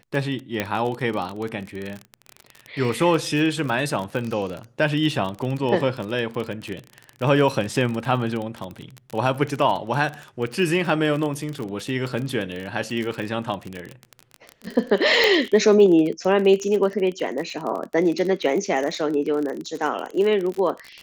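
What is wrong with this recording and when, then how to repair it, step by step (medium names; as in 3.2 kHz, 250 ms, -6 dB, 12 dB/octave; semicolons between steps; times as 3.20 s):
crackle 31 per s -26 dBFS
0.60 s: pop -9 dBFS
15.24 s: pop -5 dBFS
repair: de-click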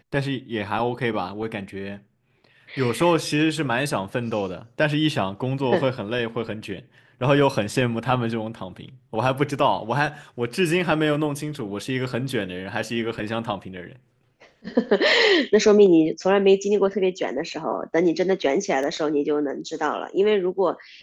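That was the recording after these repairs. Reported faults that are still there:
nothing left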